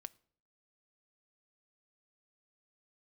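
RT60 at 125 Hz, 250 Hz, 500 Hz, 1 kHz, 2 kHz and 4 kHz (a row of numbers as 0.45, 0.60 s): 0.65, 0.65, 0.60, 0.50, 0.45, 0.40 s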